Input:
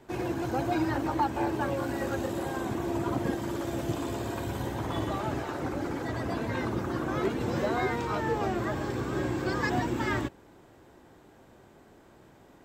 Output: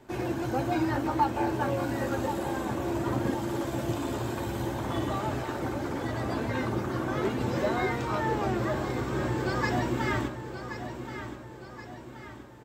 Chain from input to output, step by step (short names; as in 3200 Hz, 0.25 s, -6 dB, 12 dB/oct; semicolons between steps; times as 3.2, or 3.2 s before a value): feedback echo 1.076 s, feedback 48%, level -10 dB; reverb, pre-delay 3 ms, DRR 8.5 dB